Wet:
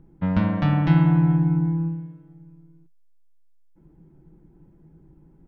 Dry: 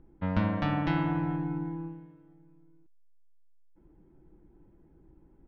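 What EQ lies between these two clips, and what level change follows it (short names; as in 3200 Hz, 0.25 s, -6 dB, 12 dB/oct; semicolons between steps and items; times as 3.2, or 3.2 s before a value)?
bell 160 Hz +13.5 dB 0.41 oct; +3.0 dB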